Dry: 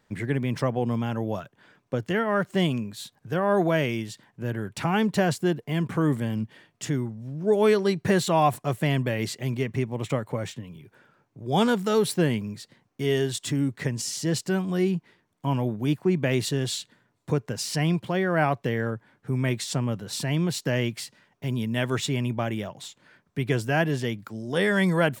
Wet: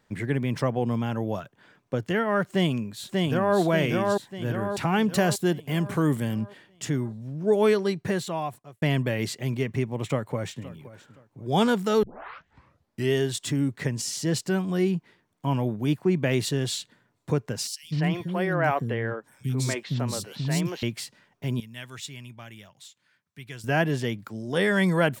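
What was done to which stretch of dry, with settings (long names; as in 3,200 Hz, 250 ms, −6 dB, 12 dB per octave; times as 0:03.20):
0:02.44–0:03.58: delay throw 590 ms, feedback 50%, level −2 dB
0:05.11–0:06.34: high-shelf EQ 5,500 Hz +8 dB
0:07.58–0:08.82: fade out
0:10.06–0:10.65: delay throw 520 ms, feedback 25%, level −17 dB
0:12.03: tape start 1.11 s
0:17.67–0:20.83: three-band delay without the direct sound highs, lows, mids 160/250 ms, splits 300/3,700 Hz
0:21.60–0:23.64: guitar amp tone stack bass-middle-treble 5-5-5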